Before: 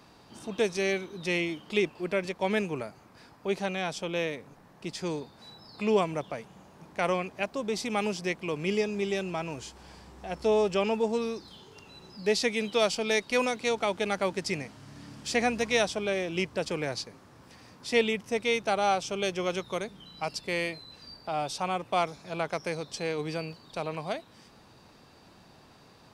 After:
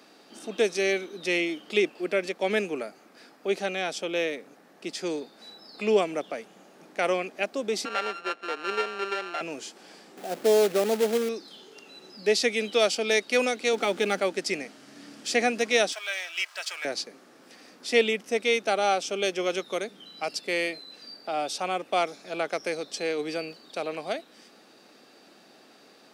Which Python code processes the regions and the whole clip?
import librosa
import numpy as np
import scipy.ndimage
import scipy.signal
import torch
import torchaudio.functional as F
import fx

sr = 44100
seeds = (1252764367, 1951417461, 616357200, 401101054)

y = fx.chain(x, sr, fx.sample_sort(block=32),
    fx.bandpass_edges(low_hz=440.0, high_hz=2900.0), at=(7.85, 9.41))
y = fx.chain(y, sr, fx.zero_step(step_db=-41.5),
    fx.lowpass(hz=1100.0, slope=12),
    fx.quant_companded(bits=4), at=(10.17, 11.29))
y = fx.chain(y, sr, fx.law_mismatch(coded='mu'),
    fx.low_shelf(hz=220.0, db=6.0),
    fx.notch(hz=650.0, q=9.7), at=(13.73, 14.2))
y = fx.chain(y, sr, fx.law_mismatch(coded='mu'),
    fx.highpass(hz=940.0, slope=24),
    fx.comb(ms=3.1, depth=0.43), at=(15.92, 16.85))
y = scipy.signal.sosfilt(scipy.signal.butter(4, 240.0, 'highpass', fs=sr, output='sos'), y)
y = fx.peak_eq(y, sr, hz=980.0, db=-11.0, octaves=0.32)
y = y * 10.0 ** (3.5 / 20.0)